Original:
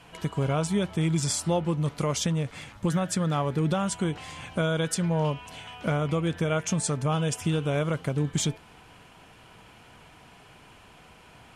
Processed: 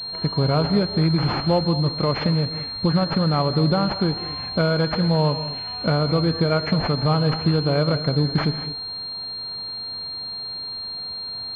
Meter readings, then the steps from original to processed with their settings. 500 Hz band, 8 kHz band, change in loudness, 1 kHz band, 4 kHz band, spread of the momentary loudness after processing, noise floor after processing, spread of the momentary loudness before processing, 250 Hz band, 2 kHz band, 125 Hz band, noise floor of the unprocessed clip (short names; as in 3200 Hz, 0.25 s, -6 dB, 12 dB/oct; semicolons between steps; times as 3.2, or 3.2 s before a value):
+6.5 dB, under -25 dB, +5.5 dB, +6.5 dB, +13.5 dB, 9 LU, -32 dBFS, 5 LU, +6.5 dB, +4.5 dB, +6.5 dB, -53 dBFS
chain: non-linear reverb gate 0.24 s rising, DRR 11 dB; pulse-width modulation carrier 4200 Hz; gain +6 dB